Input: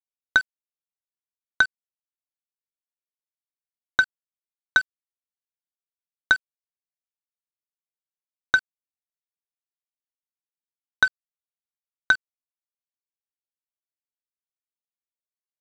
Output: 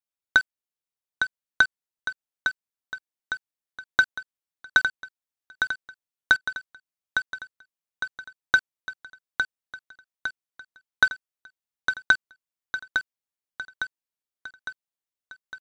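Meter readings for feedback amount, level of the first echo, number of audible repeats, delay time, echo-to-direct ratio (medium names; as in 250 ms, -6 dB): 56%, -6.5 dB, 6, 857 ms, -5.0 dB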